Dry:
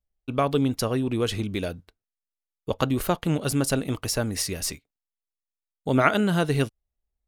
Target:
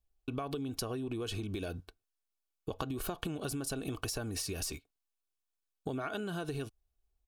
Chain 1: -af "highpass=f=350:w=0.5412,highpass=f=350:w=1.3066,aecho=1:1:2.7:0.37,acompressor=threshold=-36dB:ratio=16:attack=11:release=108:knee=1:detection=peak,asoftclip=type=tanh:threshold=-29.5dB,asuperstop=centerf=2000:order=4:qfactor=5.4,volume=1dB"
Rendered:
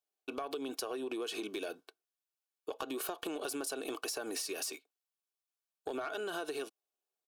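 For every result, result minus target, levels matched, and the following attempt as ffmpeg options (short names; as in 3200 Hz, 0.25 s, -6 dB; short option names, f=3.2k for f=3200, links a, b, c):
soft clip: distortion +10 dB; 250 Hz band -3.0 dB
-af "highpass=f=350:w=0.5412,highpass=f=350:w=1.3066,aecho=1:1:2.7:0.37,acompressor=threshold=-36dB:ratio=16:attack=11:release=108:knee=1:detection=peak,asoftclip=type=tanh:threshold=-20dB,asuperstop=centerf=2000:order=4:qfactor=5.4,volume=1dB"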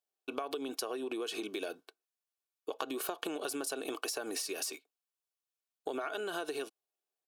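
250 Hz band -3.0 dB
-af "aecho=1:1:2.7:0.37,acompressor=threshold=-36dB:ratio=16:attack=11:release=108:knee=1:detection=peak,asoftclip=type=tanh:threshold=-20dB,asuperstop=centerf=2000:order=4:qfactor=5.4,volume=1dB"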